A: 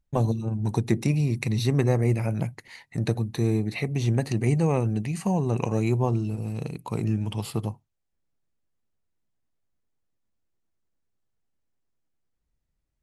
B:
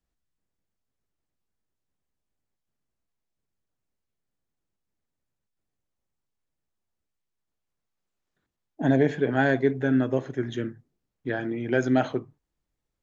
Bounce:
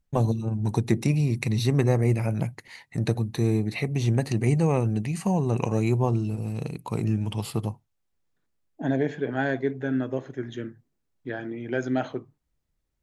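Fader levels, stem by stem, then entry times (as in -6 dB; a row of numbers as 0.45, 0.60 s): +0.5, -4.0 dB; 0.00, 0.00 s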